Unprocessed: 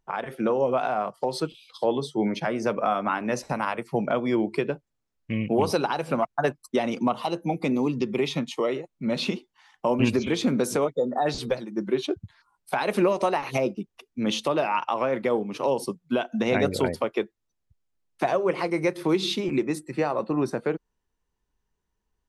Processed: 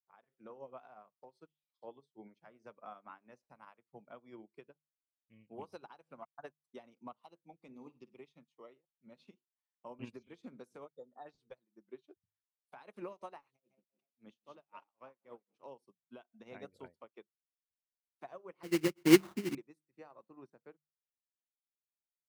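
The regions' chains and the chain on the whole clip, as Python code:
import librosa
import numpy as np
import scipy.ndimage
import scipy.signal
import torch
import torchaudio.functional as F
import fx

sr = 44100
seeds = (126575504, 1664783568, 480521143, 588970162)

y = fx.chain(x, sr, fx.highpass(hz=53.0, slope=12),
    fx.room_flutter(wall_m=9.1, rt60_s=0.4), at=(7.68, 8.17))
y = fx.chain(y, sr, fx.echo_tape(ms=153, feedback_pct=52, wet_db=-8.5, lp_hz=5500.0, drive_db=16.0, wow_cents=38),
    fx.tremolo(hz=3.8, depth=0.97), at=(13.48, 15.56))
y = fx.chain(y, sr, fx.low_shelf_res(hz=440.0, db=10.0, q=1.5),
    fx.sample_hold(seeds[0], rate_hz=2500.0, jitter_pct=20),
    fx.highpass(hz=77.0, slope=12), at=(18.63, 19.55))
y = fx.hum_notches(y, sr, base_hz=50, count=3)
y = fx.dynamic_eq(y, sr, hz=1100.0, q=1.5, threshold_db=-36.0, ratio=4.0, max_db=4)
y = fx.upward_expand(y, sr, threshold_db=-34.0, expansion=2.5)
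y = y * 10.0 ** (-7.5 / 20.0)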